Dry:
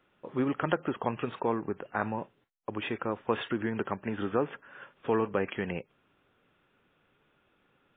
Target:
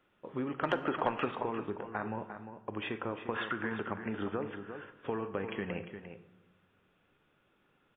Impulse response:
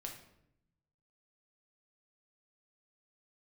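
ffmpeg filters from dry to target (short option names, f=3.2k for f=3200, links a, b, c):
-filter_complex "[0:a]asettb=1/sr,asplit=3[a][b][c];[a]atrim=end=3.344[d];[b]atrim=start=3.34:end=3.76,asetpts=PTS-STARTPTS,afade=t=in:d=0.004:c=qsin,afade=t=out:st=0.416:d=0.004:c=qsin,equalizer=f=1.3k:w=1.1:g=13[e];[c]atrim=start=3.756[f];[d][e]acrossfade=d=0.004:c1=hsin:c2=qsin[g];[g][f]acrossfade=d=0.004:c1=qsin:c2=hsin,acompressor=threshold=-29dB:ratio=5,asettb=1/sr,asplit=3[h][i][j];[h]atrim=end=0.634[k];[i]atrim=start=0.63:end=1.31,asetpts=PTS-STARTPTS,afade=t=in:d=0.004:c=qsin,afade=t=out:st=0.676:d=0.004:c=qsin,asplit=2[l][m];[m]highpass=f=720:p=1,volume=17dB,asoftclip=type=tanh:threshold=-10dB[n];[l][n]amix=inputs=2:normalize=0,lowpass=f=2.2k:p=1,volume=-6dB[o];[j]atrim=start=1.306[p];[k][o]acrossfade=d=0.004:c1=hsin:c2=qsin[q];[q][p]acrossfade=d=0.004:c1=qsin:c2=hsin,asplit=2[r][s];[s]adelay=349.9,volume=-9dB,highshelf=f=4k:g=-7.87[t];[r][t]amix=inputs=2:normalize=0,asplit=2[u][v];[1:a]atrim=start_sample=2205,asetrate=26019,aresample=44100[w];[v][w]afir=irnorm=-1:irlink=0,volume=-6dB[x];[u][x]amix=inputs=2:normalize=0,volume=-5.5dB"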